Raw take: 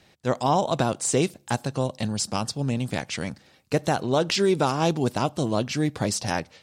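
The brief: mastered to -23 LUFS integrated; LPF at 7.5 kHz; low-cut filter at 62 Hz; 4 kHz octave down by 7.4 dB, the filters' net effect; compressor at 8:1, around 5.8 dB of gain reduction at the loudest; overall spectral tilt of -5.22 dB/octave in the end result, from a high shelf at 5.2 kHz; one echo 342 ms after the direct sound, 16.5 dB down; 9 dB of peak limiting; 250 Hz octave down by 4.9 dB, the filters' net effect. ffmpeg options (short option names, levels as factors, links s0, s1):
-af "highpass=62,lowpass=7500,equalizer=f=250:t=o:g=-7,equalizer=f=4000:t=o:g=-5.5,highshelf=f=5200:g=-8,acompressor=threshold=0.0562:ratio=8,alimiter=limit=0.0841:level=0:latency=1,aecho=1:1:342:0.15,volume=3.35"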